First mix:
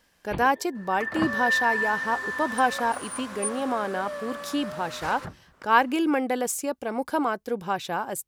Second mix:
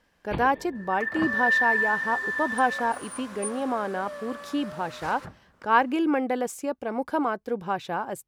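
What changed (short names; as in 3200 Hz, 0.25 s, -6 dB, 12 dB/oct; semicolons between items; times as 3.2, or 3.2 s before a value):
speech: add high shelf 3800 Hz -11.5 dB; second sound -5.0 dB; reverb: on, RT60 1.4 s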